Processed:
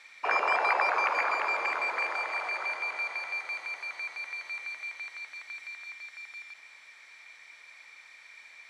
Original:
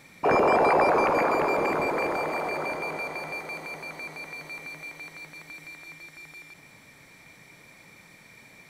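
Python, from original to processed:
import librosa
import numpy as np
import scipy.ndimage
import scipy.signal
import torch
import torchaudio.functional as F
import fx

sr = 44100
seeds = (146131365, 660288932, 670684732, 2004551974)

y = scipy.signal.sosfilt(scipy.signal.butter(2, 1400.0, 'highpass', fs=sr, output='sos'), x)
y = fx.air_absorb(y, sr, metres=93.0)
y = F.gain(torch.from_numpy(y), 3.5).numpy()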